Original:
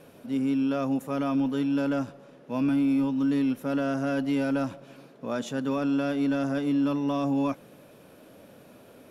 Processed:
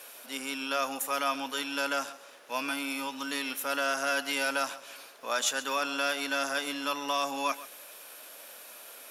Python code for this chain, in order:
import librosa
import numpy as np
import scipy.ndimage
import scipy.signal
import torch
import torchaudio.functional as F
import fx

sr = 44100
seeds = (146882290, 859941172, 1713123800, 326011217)

y = scipy.signal.sosfilt(scipy.signal.butter(2, 1000.0, 'highpass', fs=sr, output='sos'), x)
y = fx.high_shelf(y, sr, hz=4600.0, db=11.5)
y = y + 10.0 ** (-17.0 / 20.0) * np.pad(y, (int(133 * sr / 1000.0), 0))[:len(y)]
y = F.gain(torch.from_numpy(y), 7.0).numpy()